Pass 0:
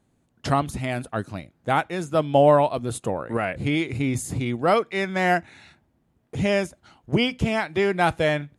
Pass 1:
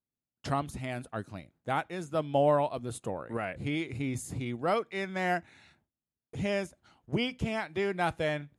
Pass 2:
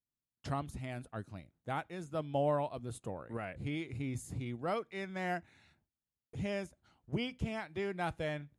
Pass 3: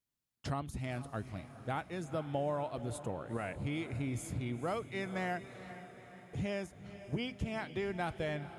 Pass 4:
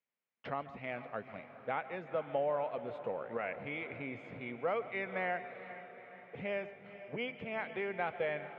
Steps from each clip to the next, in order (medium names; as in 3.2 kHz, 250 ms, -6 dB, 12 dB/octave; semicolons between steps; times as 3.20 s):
gate with hold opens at -47 dBFS; trim -9 dB
bass shelf 130 Hz +8 dB; trim -7.5 dB
compression 3:1, threshold -37 dBFS, peak gain reduction 8 dB; echo that smears into a reverb 468 ms, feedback 57%, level -13 dB; trim +3.5 dB
cabinet simulation 290–2800 Hz, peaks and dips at 320 Hz -9 dB, 500 Hz +6 dB, 2.2 kHz +5 dB; on a send at -15 dB: reverberation RT60 0.35 s, pre-delay 139 ms; on the sum: trim +1 dB